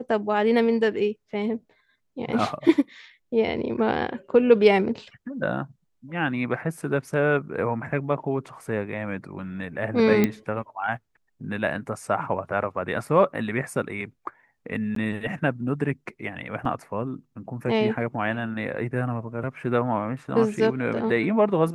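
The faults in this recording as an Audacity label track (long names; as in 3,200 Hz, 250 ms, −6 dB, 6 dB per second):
10.240000	10.240000	click −8 dBFS
14.950000	14.960000	drop-out 13 ms
16.650000	16.650000	drop-out 2.9 ms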